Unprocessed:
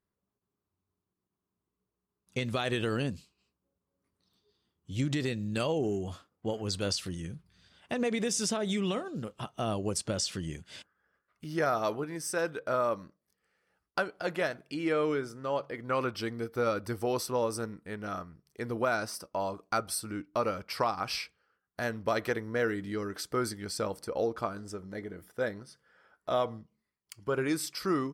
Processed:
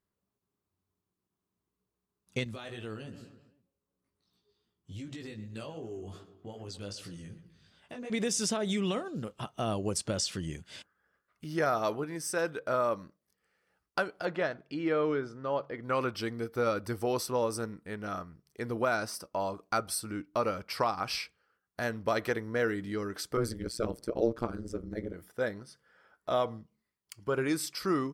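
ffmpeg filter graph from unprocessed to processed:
-filter_complex "[0:a]asettb=1/sr,asplit=3[s0][s1][s2];[s0]atrim=end=2.444[s3];[s1]atrim=start=2.44:end=8.1,asetpts=PTS-STARTPTS,afade=t=in:d=0.004:c=qsin,afade=t=out:st=5.656:d=0.004:c=qsin,asplit=2[s4][s5];[s5]adelay=126,lowpass=f=3400:p=1,volume=0.168,asplit=2[s6][s7];[s7]adelay=126,lowpass=f=3400:p=1,volume=0.45,asplit=2[s8][s9];[s9]adelay=126,lowpass=f=3400:p=1,volume=0.45,asplit=2[s10][s11];[s11]adelay=126,lowpass=f=3400:p=1,volume=0.45[s12];[s4][s6][s8][s10][s12]amix=inputs=5:normalize=0,atrim=end_sample=249606,acompressor=threshold=0.0112:ratio=2.5:attack=3.2:release=140:knee=1:detection=peak,flanger=delay=17:depth=2.7:speed=2.6[s13];[s2]atrim=start=8.096[s14];[s3][s13]acrossfade=d=0.004:c1=hsin:c2=qsin[s15];[s15][s14]acrossfade=d=0.004:c1=qsin:c2=hsin,asettb=1/sr,asplit=3[s16][s17][s18];[s16]atrim=end=14.254[s19];[s17]atrim=start=14.25:end=15.83,asetpts=PTS-STARTPTS,afade=t=in:d=0.004:c=qsin,afade=t=out:st=1.576:d=0.004:c=qsin,lowpass=3900,equalizer=f=2500:t=o:w=0.74:g=-3.5[s20];[s18]atrim=start=15.826[s21];[s19][s20]acrossfade=d=0.004:c1=hsin:c2=qsin[s22];[s22][s21]acrossfade=d=0.004:c1=qsin:c2=hsin,asettb=1/sr,asplit=3[s23][s24][s25];[s23]atrim=end=23.374[s26];[s24]atrim=start=23.37:end=25.14,asetpts=PTS-STARTPTS,afade=t=in:d=0.004:c=qsin,afade=t=out:st=1.766:d=0.004:c=qsin,lowshelf=f=510:t=q:w=1.5:g=6.5,tremolo=f=120:d=1[s27];[s25]atrim=start=25.136[s28];[s26][s27]acrossfade=d=0.004:c1=hsin:c2=qsin[s29];[s29][s28]acrossfade=d=0.004:c1=qsin:c2=hsin"

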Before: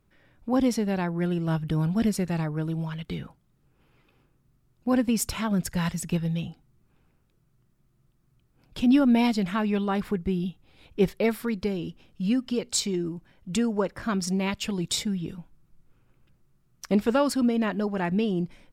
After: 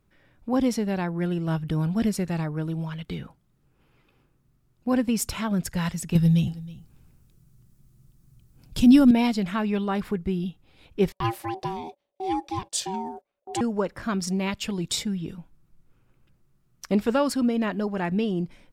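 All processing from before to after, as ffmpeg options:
-filter_complex "[0:a]asettb=1/sr,asplit=3[s0][s1][s2];[s0]atrim=end=6.154[s3];[s1]atrim=start=6.15:end=9.11,asetpts=PTS-STARTPTS,afade=t=in:d=0.004:c=qsin,afade=t=out:st=2.956:d=0.004:c=qsin,bass=f=250:g=11,treble=f=4000:g=12,aecho=1:1:319:0.112,atrim=end_sample=130536[s4];[s2]atrim=start=9.106[s5];[s3][s4]acrossfade=d=0.004:c1=hsin:c2=qsin[s6];[s6][s5]acrossfade=d=0.004:c1=qsin:c2=hsin,asettb=1/sr,asplit=3[s7][s8][s9];[s7]atrim=end=11.124[s10];[s8]atrim=start=11.12:end=13.61,asetpts=PTS-STARTPTS,afade=t=in:d=0.004:c=qsin,afade=t=out:st=2.486:d=0.004:c=qsin,agate=range=0.0794:threshold=0.00501:ratio=16:release=100:detection=peak,equalizer=f=8900:t=o:w=0.37:g=3,aeval=exprs='val(0)*sin(2*PI*570*n/s)':c=same[s11];[s9]atrim=start=13.606[s12];[s10][s11]acrossfade=d=0.004:c1=hsin:c2=qsin[s13];[s13][s12]acrossfade=d=0.004:c1=qsin:c2=hsin"

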